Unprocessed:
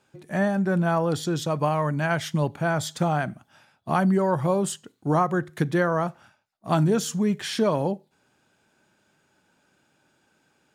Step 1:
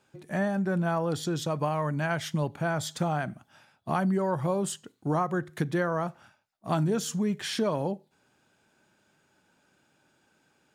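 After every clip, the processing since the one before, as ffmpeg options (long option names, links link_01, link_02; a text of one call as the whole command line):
ffmpeg -i in.wav -af "acompressor=threshold=-28dB:ratio=1.5,volume=-1.5dB" out.wav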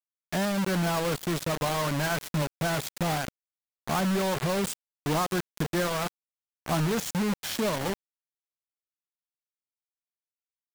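ffmpeg -i in.wav -af "asoftclip=type=tanh:threshold=-17.5dB,acrusher=bits=4:mix=0:aa=0.000001" out.wav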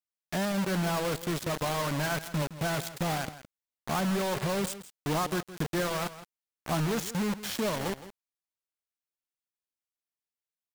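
ffmpeg -i in.wav -af "aecho=1:1:165:0.188,volume=-2.5dB" out.wav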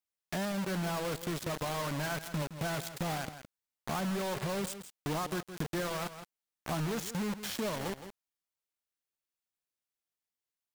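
ffmpeg -i in.wav -af "acompressor=threshold=-34dB:ratio=2.5" out.wav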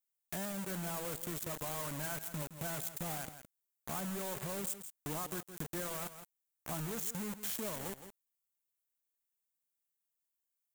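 ffmpeg -i in.wav -af "aexciter=amount=1.6:drive=9.6:freq=6700,volume=-7dB" out.wav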